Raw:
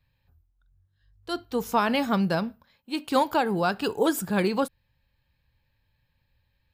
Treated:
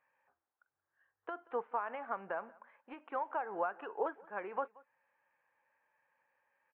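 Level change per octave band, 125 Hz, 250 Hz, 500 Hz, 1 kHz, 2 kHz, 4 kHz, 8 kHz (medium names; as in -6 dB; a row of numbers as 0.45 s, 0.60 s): under -30 dB, -25.5 dB, -13.0 dB, -10.5 dB, -13.0 dB, under -30 dB, under -40 dB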